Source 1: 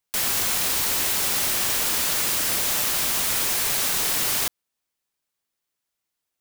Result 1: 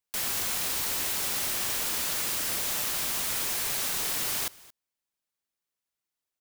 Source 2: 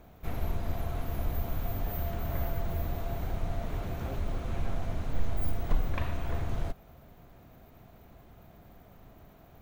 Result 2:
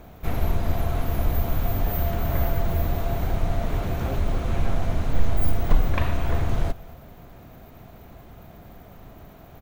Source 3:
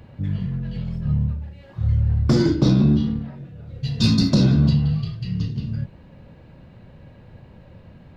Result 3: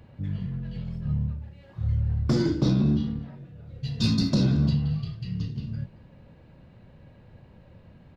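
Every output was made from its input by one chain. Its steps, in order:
single-tap delay 225 ms −22 dB
loudness normalisation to −27 LKFS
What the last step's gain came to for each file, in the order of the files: −6.5, +9.0, −6.0 decibels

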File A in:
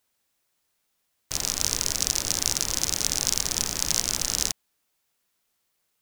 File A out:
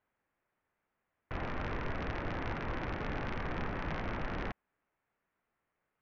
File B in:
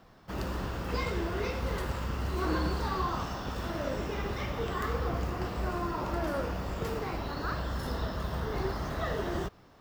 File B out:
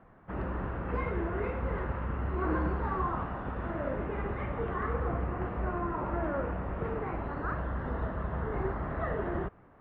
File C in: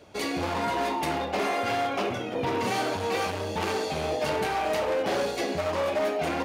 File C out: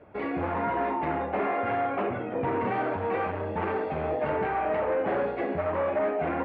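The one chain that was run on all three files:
inverse Chebyshev low-pass filter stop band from 8,200 Hz, stop band 70 dB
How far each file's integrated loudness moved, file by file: −14.5, −0.5, −0.5 LU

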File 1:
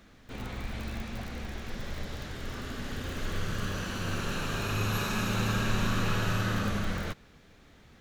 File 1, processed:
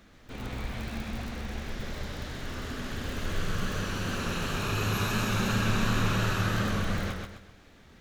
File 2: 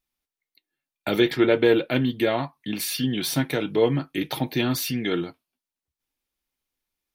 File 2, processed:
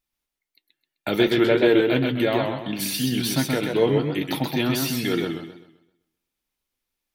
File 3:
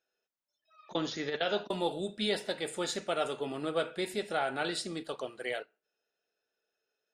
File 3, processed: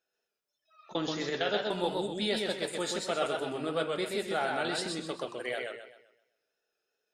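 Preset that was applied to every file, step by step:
feedback echo with a swinging delay time 129 ms, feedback 37%, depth 109 cents, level −3.5 dB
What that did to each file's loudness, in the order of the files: +2.0, +1.5, +1.5 LU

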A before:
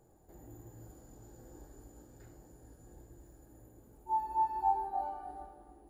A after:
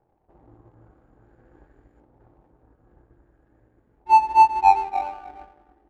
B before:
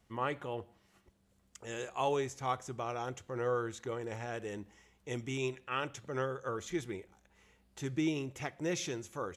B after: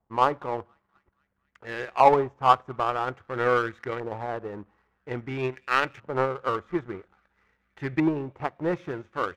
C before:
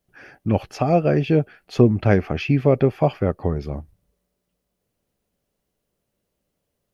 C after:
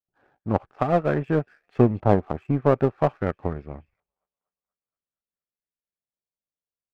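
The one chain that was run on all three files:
delay with a high-pass on its return 237 ms, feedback 68%, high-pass 2,300 Hz, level −17 dB
auto-filter low-pass saw up 0.5 Hz 890–2,100 Hz
power curve on the samples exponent 1.4
normalise the peak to −3 dBFS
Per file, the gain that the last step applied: +12.0, +12.5, −1.0 decibels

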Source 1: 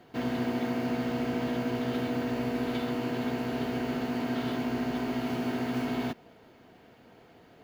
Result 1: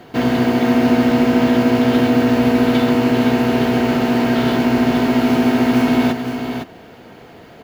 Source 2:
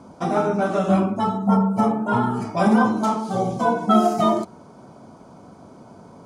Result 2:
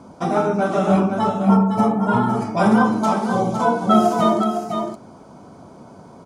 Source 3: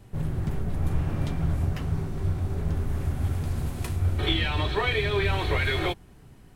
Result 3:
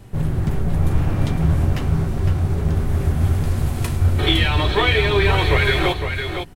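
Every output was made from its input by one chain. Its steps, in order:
single-tap delay 509 ms −7 dB
normalise the peak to −3 dBFS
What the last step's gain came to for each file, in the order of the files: +14.5, +1.5, +8.0 decibels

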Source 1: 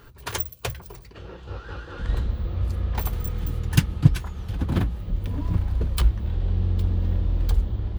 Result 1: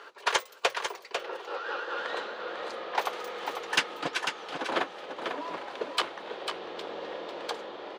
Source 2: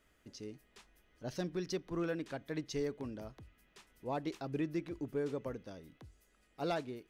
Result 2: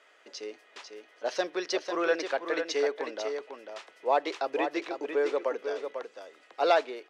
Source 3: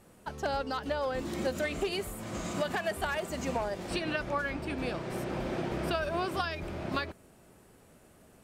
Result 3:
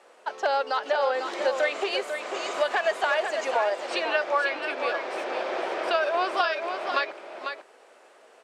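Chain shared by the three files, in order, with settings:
high-pass filter 470 Hz 24 dB per octave
in parallel at −10.5 dB: sine wavefolder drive 8 dB, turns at −11 dBFS
on the sum: high-frequency loss of the air 99 metres
single-tap delay 497 ms −7 dB
normalise the peak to −12 dBFS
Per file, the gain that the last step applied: +1.5, +8.0, +2.5 decibels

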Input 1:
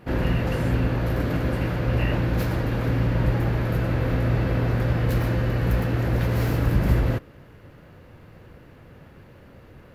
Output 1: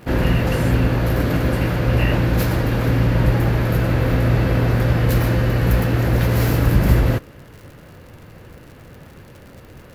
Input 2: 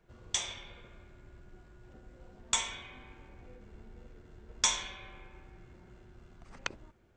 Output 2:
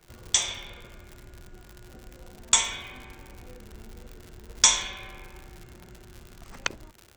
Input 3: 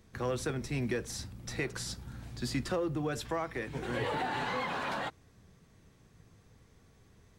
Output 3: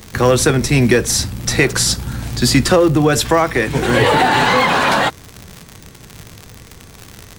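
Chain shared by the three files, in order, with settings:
high-shelf EQ 5,000 Hz +6.5 dB
surface crackle 110 per second −41 dBFS
normalise the peak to −1.5 dBFS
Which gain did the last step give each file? +5.5, +6.5, +20.5 decibels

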